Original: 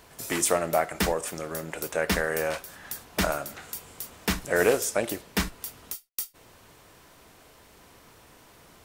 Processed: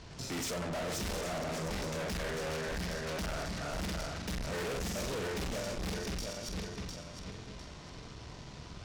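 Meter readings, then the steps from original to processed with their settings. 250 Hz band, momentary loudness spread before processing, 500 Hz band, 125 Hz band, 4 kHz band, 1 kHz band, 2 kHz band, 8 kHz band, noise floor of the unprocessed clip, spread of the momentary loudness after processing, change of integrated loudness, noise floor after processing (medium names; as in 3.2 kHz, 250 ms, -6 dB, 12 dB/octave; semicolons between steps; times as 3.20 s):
-5.5 dB, 15 LU, -9.5 dB, -0.5 dB, -4.0 dB, -8.5 dB, -9.5 dB, -10.0 dB, -55 dBFS, 12 LU, -9.0 dB, -49 dBFS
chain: backward echo that repeats 352 ms, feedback 51%, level -2 dB; low-pass 5.3 kHz 24 dB/octave; tone controls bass +12 dB, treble +10 dB; band-stop 1.7 kHz, Q 29; on a send: flutter echo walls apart 7.8 m, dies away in 0.4 s; on the sum: valve stage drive 35 dB, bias 0.45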